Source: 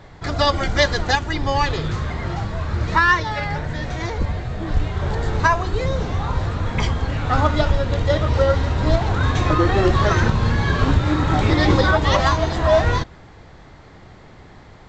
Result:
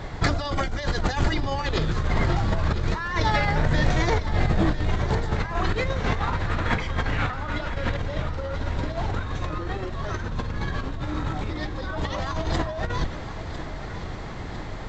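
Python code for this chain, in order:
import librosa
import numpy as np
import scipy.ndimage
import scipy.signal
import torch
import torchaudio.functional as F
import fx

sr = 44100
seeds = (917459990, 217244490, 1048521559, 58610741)

y = fx.octave_divider(x, sr, octaves=2, level_db=-1.0)
y = fx.peak_eq(y, sr, hz=1900.0, db=9.0, octaves=1.6, at=(5.36, 7.97))
y = fx.over_compress(y, sr, threshold_db=-26.0, ratio=-1.0)
y = fx.echo_feedback(y, sr, ms=1002, feedback_pct=57, wet_db=-12.5)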